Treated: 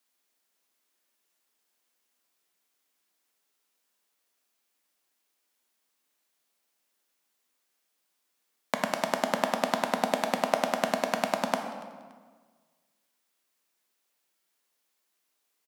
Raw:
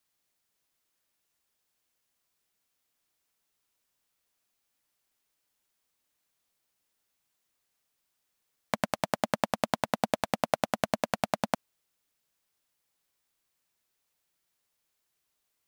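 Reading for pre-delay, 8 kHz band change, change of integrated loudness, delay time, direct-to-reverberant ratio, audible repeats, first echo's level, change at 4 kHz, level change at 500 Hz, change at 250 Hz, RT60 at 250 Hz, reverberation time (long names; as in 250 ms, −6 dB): 9 ms, +2.5 dB, +2.5 dB, 286 ms, 4.0 dB, 2, −22.0 dB, +2.5 dB, +2.5 dB, +1.0 dB, 1.7 s, 1.5 s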